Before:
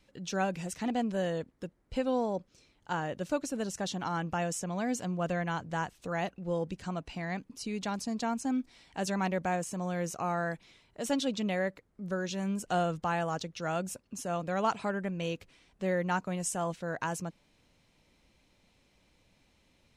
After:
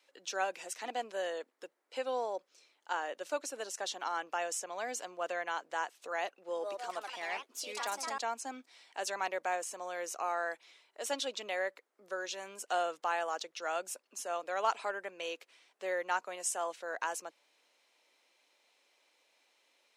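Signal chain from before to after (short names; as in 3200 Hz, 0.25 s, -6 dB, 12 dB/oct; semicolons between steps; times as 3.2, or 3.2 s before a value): Bessel high-pass 590 Hz, order 6; 6.29–8.32 echoes that change speed 0.185 s, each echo +3 st, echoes 2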